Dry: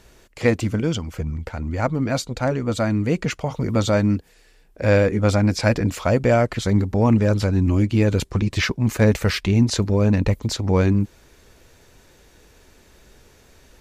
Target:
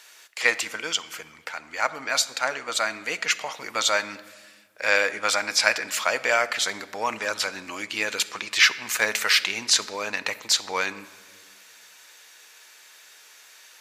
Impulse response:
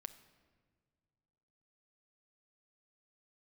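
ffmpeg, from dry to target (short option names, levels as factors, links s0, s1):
-filter_complex "[0:a]highpass=1400,asplit=2[s0][s1];[1:a]atrim=start_sample=2205[s2];[s1][s2]afir=irnorm=-1:irlink=0,volume=5.01[s3];[s0][s3]amix=inputs=2:normalize=0,volume=0.631"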